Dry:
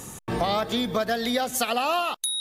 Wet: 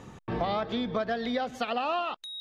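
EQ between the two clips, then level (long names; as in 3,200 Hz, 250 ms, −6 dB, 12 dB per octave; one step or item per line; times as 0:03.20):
high-frequency loss of the air 230 metres
−3.5 dB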